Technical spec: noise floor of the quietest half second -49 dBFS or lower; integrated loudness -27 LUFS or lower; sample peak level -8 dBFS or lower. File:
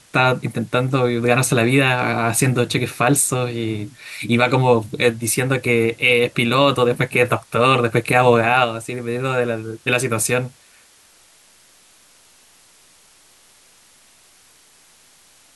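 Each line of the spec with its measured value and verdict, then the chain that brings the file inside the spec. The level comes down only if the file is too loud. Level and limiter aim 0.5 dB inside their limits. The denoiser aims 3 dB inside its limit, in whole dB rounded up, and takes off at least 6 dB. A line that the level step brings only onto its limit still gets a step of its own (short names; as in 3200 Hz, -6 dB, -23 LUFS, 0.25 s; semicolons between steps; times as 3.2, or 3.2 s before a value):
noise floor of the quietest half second -52 dBFS: OK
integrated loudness -18.0 LUFS: fail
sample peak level -3.0 dBFS: fail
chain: gain -9.5 dB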